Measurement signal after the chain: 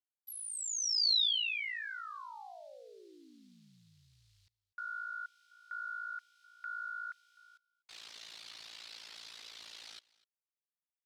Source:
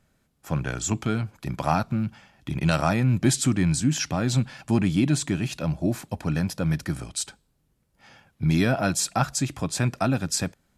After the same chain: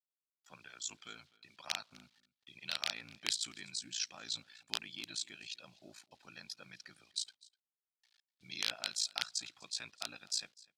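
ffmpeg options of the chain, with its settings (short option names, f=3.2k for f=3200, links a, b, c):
-af "afftdn=nr=23:nf=-43,aeval=exprs='val(0)*sin(2*PI*28*n/s)':c=same,acrusher=bits=9:mix=0:aa=0.000001,aeval=exprs='(mod(3.76*val(0)+1,2)-1)/3.76':c=same,bandpass=f=4.1k:t=q:w=2.3:csg=0,aecho=1:1:250:0.0708"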